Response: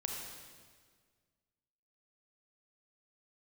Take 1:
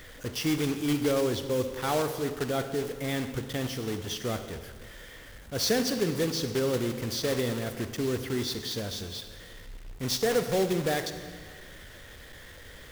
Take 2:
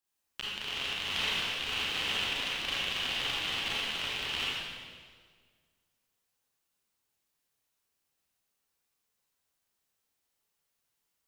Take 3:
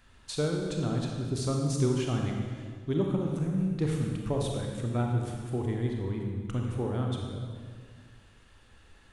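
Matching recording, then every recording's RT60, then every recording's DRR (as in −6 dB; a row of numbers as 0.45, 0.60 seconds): 3; 1.7, 1.7, 1.7 seconds; 8.5, −8.0, 0.0 decibels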